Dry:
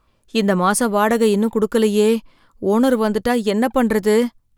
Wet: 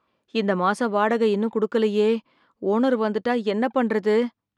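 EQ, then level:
band-pass filter 200–3,700 Hz
−4.0 dB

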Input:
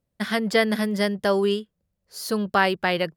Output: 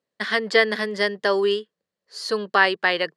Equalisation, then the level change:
loudspeaker in its box 300–8,700 Hz, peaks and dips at 430 Hz +6 dB, 1,100 Hz +5 dB, 1,800 Hz +9 dB, 3,000 Hz +4 dB, 4,300 Hz +7 dB
−1.5 dB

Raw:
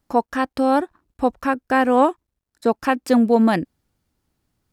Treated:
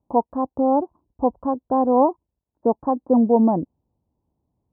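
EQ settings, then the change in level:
high-pass filter 48 Hz
Chebyshev low-pass filter 1,000 Hz, order 5
0.0 dB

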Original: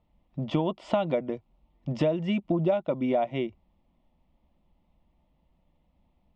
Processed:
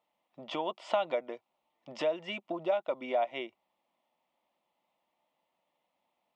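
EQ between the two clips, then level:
high-pass filter 650 Hz 12 dB per octave
0.0 dB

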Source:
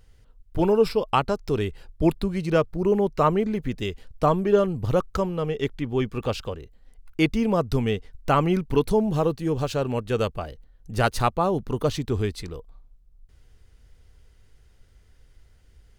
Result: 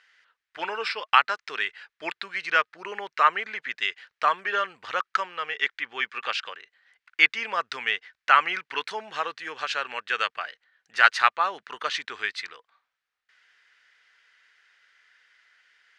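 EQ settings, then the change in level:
high-pass with resonance 1,700 Hz, resonance Q 2.7
high-frequency loss of the air 110 metres
high-shelf EQ 11,000 Hz −10 dB
+7.0 dB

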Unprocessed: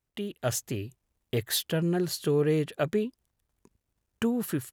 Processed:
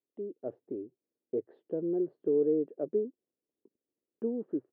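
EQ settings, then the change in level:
flat-topped band-pass 380 Hz, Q 1.5
high-frequency loss of the air 270 metres
0.0 dB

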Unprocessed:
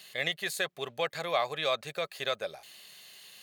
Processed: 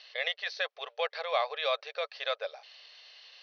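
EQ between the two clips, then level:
linear-phase brick-wall high-pass 430 Hz
Chebyshev low-pass filter 6,000 Hz, order 10
0.0 dB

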